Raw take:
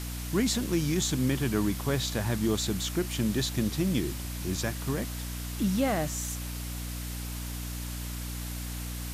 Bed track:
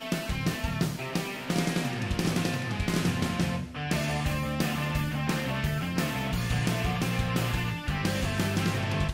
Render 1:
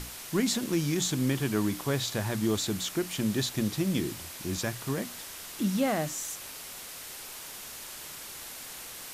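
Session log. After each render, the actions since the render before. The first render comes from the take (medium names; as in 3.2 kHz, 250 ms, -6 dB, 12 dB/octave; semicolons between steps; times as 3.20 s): hum notches 60/120/180/240/300 Hz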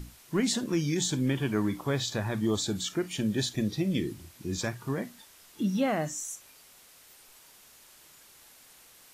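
noise print and reduce 13 dB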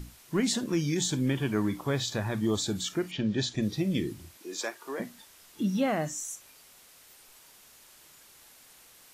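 3.10–3.61 s: low-pass 4 kHz -> 8.7 kHz 24 dB/octave; 4.37–5.00 s: high-pass 350 Hz 24 dB/octave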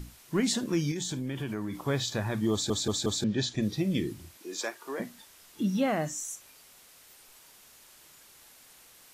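0.91–1.84 s: compression, threshold -30 dBFS; 2.52 s: stutter in place 0.18 s, 4 plays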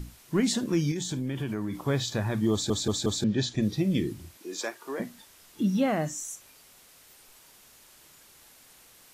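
bass shelf 420 Hz +3.5 dB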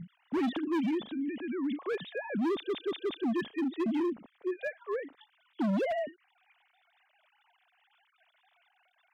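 formants replaced by sine waves; hard clipper -27 dBFS, distortion -5 dB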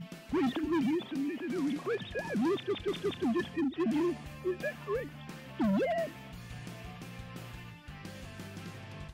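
add bed track -17 dB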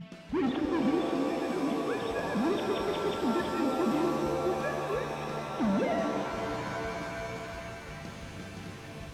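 distance through air 60 m; pitch-shifted reverb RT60 3.9 s, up +7 st, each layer -2 dB, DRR 3.5 dB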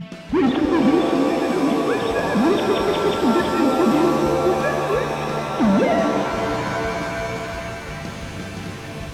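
trim +11.5 dB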